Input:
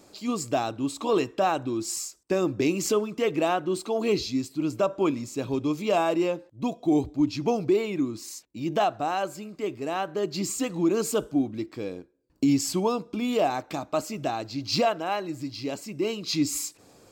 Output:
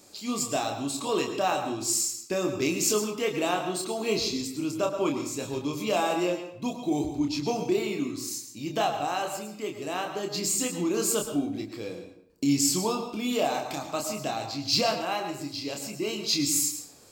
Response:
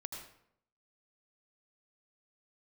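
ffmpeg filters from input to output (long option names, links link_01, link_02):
-filter_complex "[0:a]highshelf=frequency=2800:gain=10.5,asplit=2[link_01][link_02];[1:a]atrim=start_sample=2205,adelay=28[link_03];[link_02][link_03]afir=irnorm=-1:irlink=0,volume=-0.5dB[link_04];[link_01][link_04]amix=inputs=2:normalize=0,volume=-5dB"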